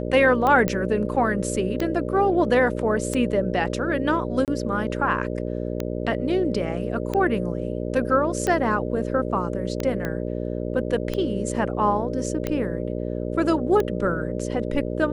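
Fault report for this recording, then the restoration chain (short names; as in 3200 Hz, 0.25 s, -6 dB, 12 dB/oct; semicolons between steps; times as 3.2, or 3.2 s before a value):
buzz 60 Hz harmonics 10 -28 dBFS
tick 45 rpm -12 dBFS
0.68 pop -9 dBFS
4.45–4.48 gap 28 ms
10.05 pop -15 dBFS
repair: de-click; de-hum 60 Hz, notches 10; interpolate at 4.45, 28 ms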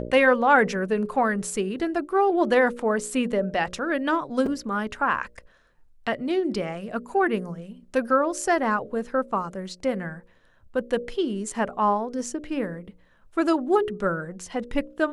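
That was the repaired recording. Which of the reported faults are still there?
none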